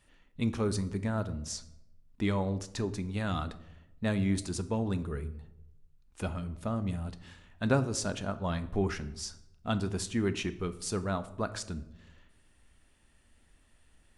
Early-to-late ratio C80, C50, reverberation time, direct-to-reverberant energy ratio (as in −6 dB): 18.0 dB, 15.5 dB, 0.85 s, 11.0 dB